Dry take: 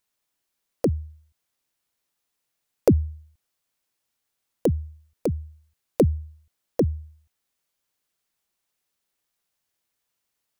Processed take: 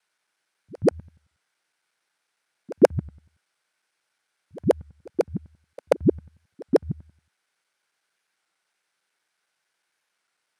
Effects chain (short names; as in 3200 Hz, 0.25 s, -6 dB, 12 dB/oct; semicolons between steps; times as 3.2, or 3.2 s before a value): local time reversal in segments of 91 ms; speaker cabinet 200–9700 Hz, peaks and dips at 250 Hz -7 dB, 830 Hz +3 dB, 1500 Hz +10 dB, 2200 Hz +5 dB, 7100 Hz -6 dB; pre-echo 0.134 s -22.5 dB; record warp 33 1/3 rpm, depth 100 cents; gain +4.5 dB